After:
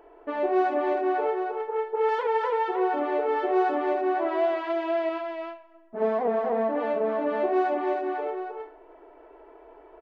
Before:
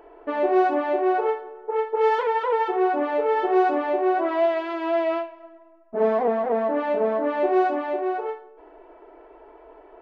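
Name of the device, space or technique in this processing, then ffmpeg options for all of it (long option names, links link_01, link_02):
ducked delay: -filter_complex "[0:a]asplit=3[link_01][link_02][link_03];[link_02]adelay=312,volume=-4dB[link_04];[link_03]apad=whole_len=455344[link_05];[link_04][link_05]sidechaincompress=threshold=-22dB:ratio=8:attack=8.6:release=149[link_06];[link_01][link_06]amix=inputs=2:normalize=0,asettb=1/sr,asplit=3[link_07][link_08][link_09];[link_07]atrim=end=1.614[link_10];[link_08]atrim=start=1.61:end=2.09,asetpts=PTS-STARTPTS,afade=type=in:duration=0.004:curve=qsin,afade=type=out:start_time=0.476:duration=0.004:curve=qsin,acrossover=split=3000[link_11][link_12];[link_12]acompressor=threshold=-55dB:ratio=4:attack=1:release=60[link_13];[link_11][link_13]amix=inputs=2:normalize=0[link_14];[link_09]atrim=start=2.086[link_15];[link_10][link_14]acrossfade=duration=0.004:curve1=hsin:curve2=qsin[link_16];[link_16][link_15]acrossfade=duration=0.004:curve1=qsin:curve2=hsin,asettb=1/sr,asplit=3[link_17][link_18][link_19];[link_17]atrim=end=5.094[link_20];[link_18]atrim=start=5.09:end=6.02,asetpts=PTS-STARTPTS,afade=type=in:duration=0.004:curve=qsin,afade=type=out:start_time=0.926:duration=0.004:curve=qsin,equalizer=frequency=480:width_type=o:width=1.5:gain=-4.5[link_21];[link_19]atrim=start=6.016[link_22];[link_20][link_21]acrossfade=duration=0.004:curve1=hsin:curve2=qsin[link_23];[link_23][link_22]acrossfade=duration=0.004:curve1=qsin:curve2=hsin,volume=-4dB"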